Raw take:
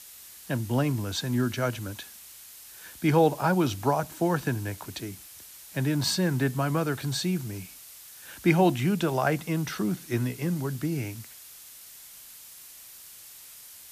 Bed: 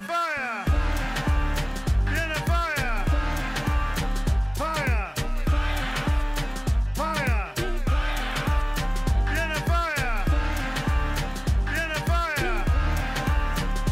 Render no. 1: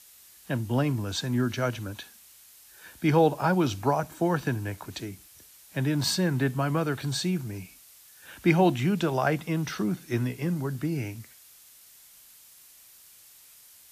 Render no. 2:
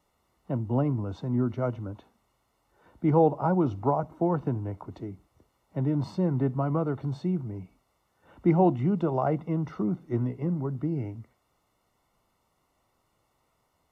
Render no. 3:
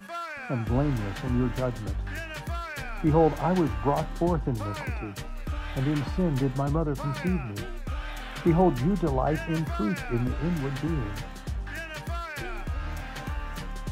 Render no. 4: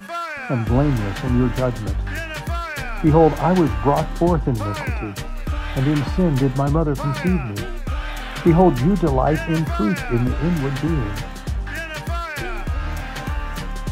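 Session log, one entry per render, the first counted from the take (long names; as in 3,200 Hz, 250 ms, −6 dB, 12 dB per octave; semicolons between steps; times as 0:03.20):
noise reduction from a noise print 6 dB
Savitzky-Golay smoothing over 65 samples
mix in bed −9.5 dB
level +8 dB; brickwall limiter −3 dBFS, peak gain reduction 1.5 dB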